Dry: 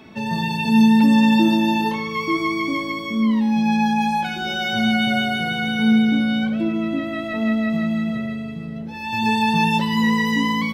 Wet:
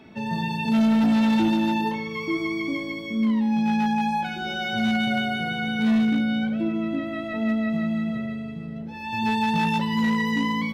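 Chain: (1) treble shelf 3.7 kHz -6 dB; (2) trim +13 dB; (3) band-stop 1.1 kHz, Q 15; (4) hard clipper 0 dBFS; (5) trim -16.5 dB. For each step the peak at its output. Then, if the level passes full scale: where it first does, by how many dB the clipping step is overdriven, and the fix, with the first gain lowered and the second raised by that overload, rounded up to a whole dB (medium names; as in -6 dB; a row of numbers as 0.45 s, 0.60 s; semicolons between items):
-5.5 dBFS, +7.5 dBFS, +7.5 dBFS, 0.0 dBFS, -16.5 dBFS; step 2, 7.5 dB; step 2 +5 dB, step 5 -8.5 dB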